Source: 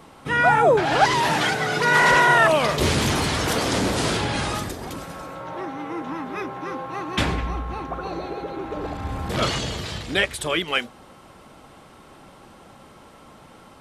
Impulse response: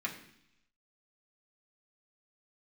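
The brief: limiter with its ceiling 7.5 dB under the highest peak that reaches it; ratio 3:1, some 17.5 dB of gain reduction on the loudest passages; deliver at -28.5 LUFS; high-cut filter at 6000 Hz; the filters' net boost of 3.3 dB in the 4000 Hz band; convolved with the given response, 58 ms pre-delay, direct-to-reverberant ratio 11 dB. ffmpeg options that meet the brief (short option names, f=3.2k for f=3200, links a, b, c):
-filter_complex "[0:a]lowpass=6k,equalizer=f=4k:t=o:g=5,acompressor=threshold=-37dB:ratio=3,alimiter=level_in=4dB:limit=-24dB:level=0:latency=1,volume=-4dB,asplit=2[a][b];[1:a]atrim=start_sample=2205,adelay=58[c];[b][c]afir=irnorm=-1:irlink=0,volume=-14.5dB[d];[a][d]amix=inputs=2:normalize=0,volume=9.5dB"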